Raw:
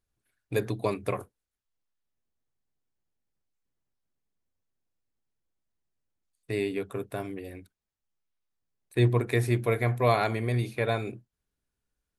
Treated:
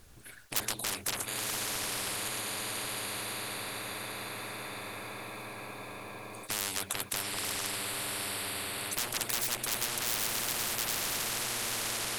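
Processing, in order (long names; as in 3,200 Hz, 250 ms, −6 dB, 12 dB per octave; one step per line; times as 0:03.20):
feedback delay with all-pass diffusion 972 ms, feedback 45%, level −3.5 dB
sine wavefolder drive 20 dB, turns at −9 dBFS
every bin compressed towards the loudest bin 10 to 1
level −6 dB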